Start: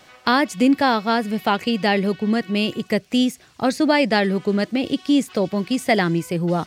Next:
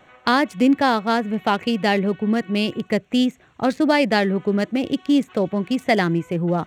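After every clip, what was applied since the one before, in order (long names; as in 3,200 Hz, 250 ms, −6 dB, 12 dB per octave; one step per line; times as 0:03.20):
adaptive Wiener filter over 9 samples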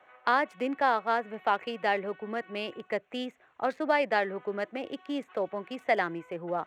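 three-way crossover with the lows and the highs turned down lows −19 dB, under 430 Hz, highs −14 dB, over 2,500 Hz
level −5 dB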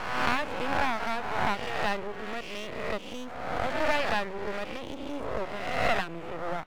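peak hold with a rise ahead of every peak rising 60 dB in 1.36 s
hum removal 93.92 Hz, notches 4
half-wave rectification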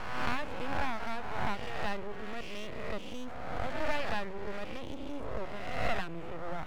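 low-shelf EQ 150 Hz +9 dB
reversed playback
upward compression, threshold −23 dBFS
reversed playback
level −7.5 dB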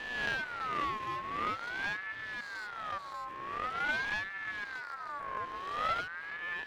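ring modulator whose carrier an LFO sweeps 1,400 Hz, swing 25%, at 0.46 Hz
level −2.5 dB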